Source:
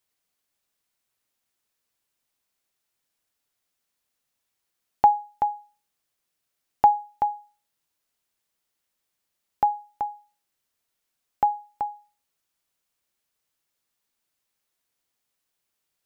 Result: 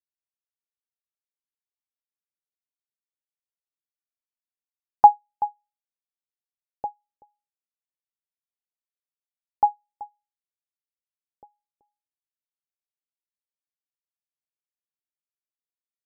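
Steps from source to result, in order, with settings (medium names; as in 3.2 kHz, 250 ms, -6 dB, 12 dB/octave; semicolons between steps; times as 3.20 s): LFO low-pass saw down 0.24 Hz 330–1500 Hz; upward expansion 2.5:1, over -30 dBFS; trim +1 dB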